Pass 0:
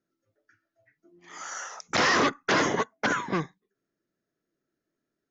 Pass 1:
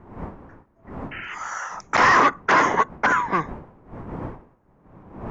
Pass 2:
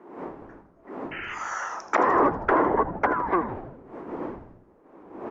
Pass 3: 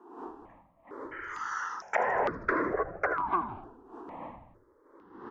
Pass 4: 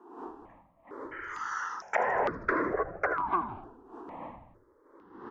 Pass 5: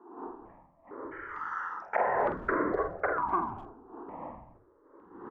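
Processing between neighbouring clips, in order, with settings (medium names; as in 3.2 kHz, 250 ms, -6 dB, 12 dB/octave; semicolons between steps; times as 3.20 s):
wind noise 290 Hz -40 dBFS; painted sound noise, 1.11–1.35 s, 1.3–3.1 kHz -40 dBFS; graphic EQ 1/2/4 kHz +11/+5/-6 dB
low-pass that closes with the level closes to 860 Hz, closed at -16.5 dBFS; ladder high-pass 270 Hz, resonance 40%; frequency-shifting echo 80 ms, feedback 64%, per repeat -120 Hz, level -12 dB; trim +7 dB
bass shelf 370 Hz -6.5 dB; stepped phaser 2.2 Hz 570–3000 Hz; trim -1.5 dB
no audible change
low-pass 1.6 kHz 12 dB/octave; doubling 47 ms -6 dB; speakerphone echo 250 ms, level -25 dB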